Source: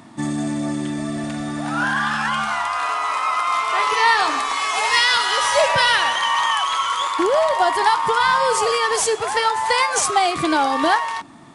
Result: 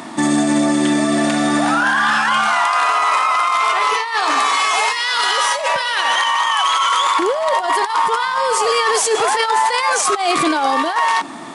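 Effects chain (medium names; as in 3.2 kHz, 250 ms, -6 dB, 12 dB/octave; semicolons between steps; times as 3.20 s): high-pass 280 Hz 12 dB/octave; compressor with a negative ratio -22 dBFS, ratio -0.5; loudness maximiser +18 dB; trim -6.5 dB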